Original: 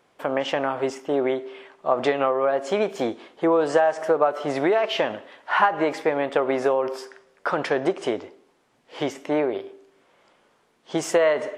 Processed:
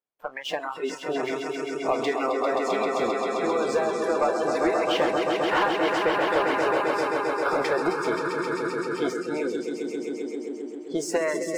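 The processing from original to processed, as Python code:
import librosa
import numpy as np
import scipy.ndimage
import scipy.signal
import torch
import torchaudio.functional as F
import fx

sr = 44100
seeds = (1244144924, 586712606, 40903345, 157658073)

y = fx.hpss(x, sr, part='harmonic', gain_db=-8)
y = fx.echo_swell(y, sr, ms=132, loudest=5, wet_db=-6.0)
y = fx.leveller(y, sr, passes=2)
y = fx.noise_reduce_blind(y, sr, reduce_db=19)
y = y * librosa.db_to_amplitude(-8.0)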